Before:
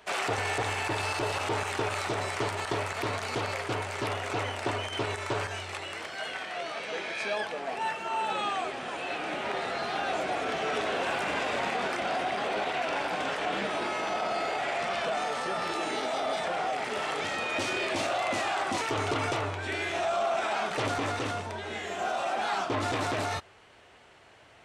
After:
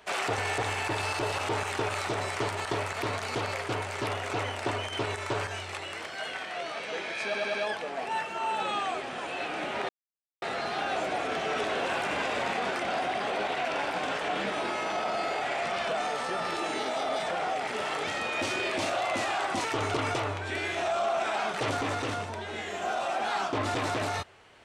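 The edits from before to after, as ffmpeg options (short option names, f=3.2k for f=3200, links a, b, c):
-filter_complex "[0:a]asplit=5[a][b][c][d][e];[a]atrim=end=7.342[f];[b]atrim=start=7.238:end=7.342[g];[c]atrim=start=7.238:end=7.342[h];[d]atrim=start=7.238:end=9.59,asetpts=PTS-STARTPTS,afade=t=out:st=2.348:d=0.004:c=hsin,apad=pad_dur=0.53[i];[e]atrim=start=9.59,asetpts=PTS-STARTPTS,afade=t=in:d=0.004:c=hsin[j];[f][g]acrossfade=d=0.004:c1=hsin:c2=hsin[k];[k][h]acrossfade=d=0.004:c1=hsin:c2=hsin[l];[i][j]concat=n=2:v=0:a=1[m];[l][m]acrossfade=d=0.004:c1=hsin:c2=hsin"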